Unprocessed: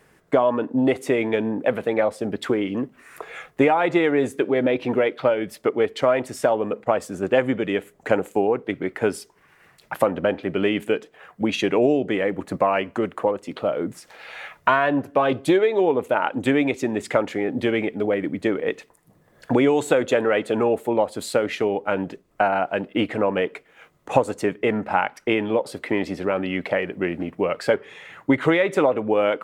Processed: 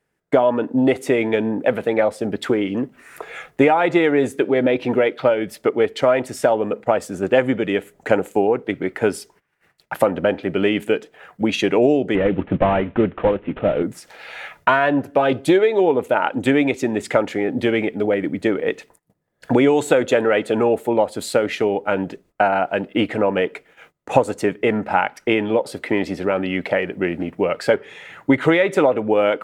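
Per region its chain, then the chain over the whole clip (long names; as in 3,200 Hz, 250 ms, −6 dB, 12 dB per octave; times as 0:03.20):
0:12.15–0:13.83: variable-slope delta modulation 16 kbit/s + low-shelf EQ 280 Hz +10 dB
whole clip: noise gate −52 dBFS, range −20 dB; notch filter 1,100 Hz, Q 11; level +3 dB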